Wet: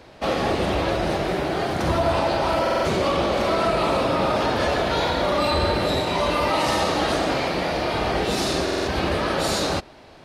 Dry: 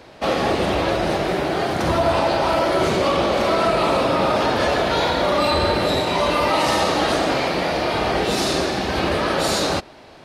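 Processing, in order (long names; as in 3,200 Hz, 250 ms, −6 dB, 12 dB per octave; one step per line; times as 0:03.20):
low-shelf EQ 97 Hz +6 dB
buffer that repeats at 0:02.62/0:08.64, samples 2,048, times 4
level −3 dB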